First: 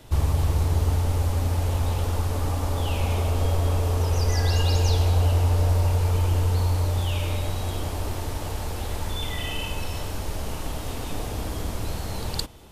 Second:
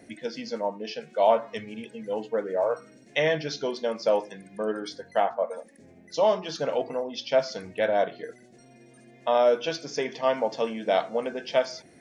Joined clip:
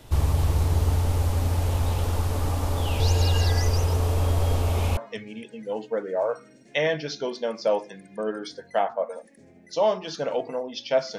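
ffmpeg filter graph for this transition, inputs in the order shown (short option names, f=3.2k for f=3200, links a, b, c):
-filter_complex "[0:a]apad=whole_dur=11.18,atrim=end=11.18,asplit=2[a][b];[a]atrim=end=3.002[c];[b]atrim=start=2.998:end=4.972,asetpts=PTS-STARTPTS,areverse[d];[1:a]atrim=start=1.378:end=7.59[e];[c][d]acrossfade=d=0.004:c1=hsin:c2=hsin[f];[f][e]acrossfade=d=0.004:c1=hsin:c2=hsin"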